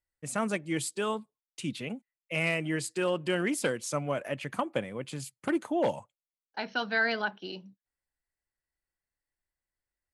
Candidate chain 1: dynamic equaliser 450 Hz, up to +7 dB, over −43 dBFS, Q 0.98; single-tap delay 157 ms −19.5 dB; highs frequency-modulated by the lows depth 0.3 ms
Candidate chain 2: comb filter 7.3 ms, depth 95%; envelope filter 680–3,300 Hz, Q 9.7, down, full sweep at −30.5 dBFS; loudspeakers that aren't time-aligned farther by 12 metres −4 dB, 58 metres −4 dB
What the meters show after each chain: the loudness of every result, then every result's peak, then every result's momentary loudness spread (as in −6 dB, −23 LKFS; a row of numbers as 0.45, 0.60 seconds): −28.5, −37.5 LKFS; −11.0, −20.5 dBFS; 13, 20 LU